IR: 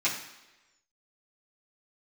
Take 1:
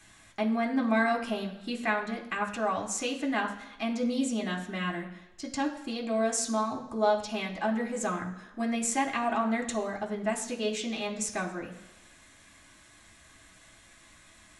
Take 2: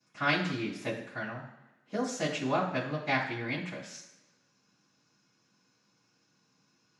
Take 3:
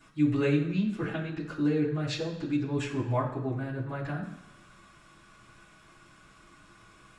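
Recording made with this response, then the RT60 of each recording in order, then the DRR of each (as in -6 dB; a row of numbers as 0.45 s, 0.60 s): 3; 1.1 s, 1.1 s, 1.1 s; -0.5 dB, -17.0 dB, -10.0 dB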